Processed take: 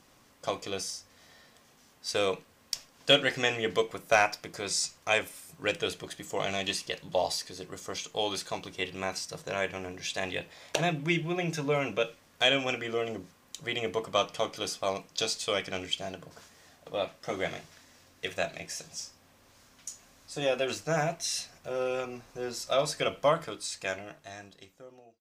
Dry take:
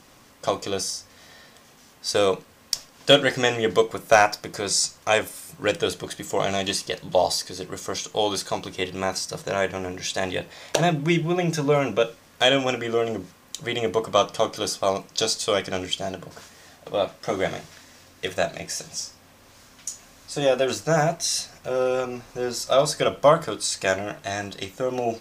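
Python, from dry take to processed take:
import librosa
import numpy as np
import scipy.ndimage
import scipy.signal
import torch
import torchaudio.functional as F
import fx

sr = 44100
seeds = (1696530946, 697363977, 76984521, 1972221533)

y = fx.fade_out_tail(x, sr, length_s=2.08)
y = fx.dynamic_eq(y, sr, hz=2500.0, q=1.6, threshold_db=-42.0, ratio=4.0, max_db=7)
y = y * 10.0 ** (-8.5 / 20.0)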